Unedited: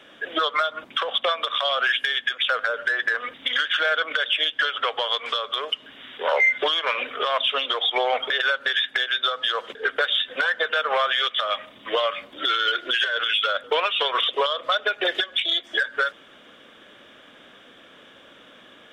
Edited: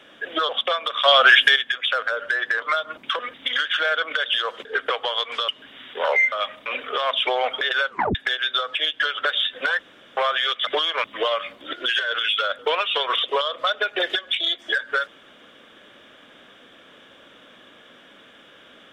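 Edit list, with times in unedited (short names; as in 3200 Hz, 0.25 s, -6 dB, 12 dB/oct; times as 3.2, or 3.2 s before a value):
0.49–1.06 move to 3.19
1.61–2.13 gain +9 dB
4.34–4.84 swap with 9.44–10
5.42–5.72 cut
6.56–6.93 swap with 11.42–11.76
7.54–7.96 cut
8.58 tape stop 0.26 s
10.54–10.92 room tone
12.45–12.78 cut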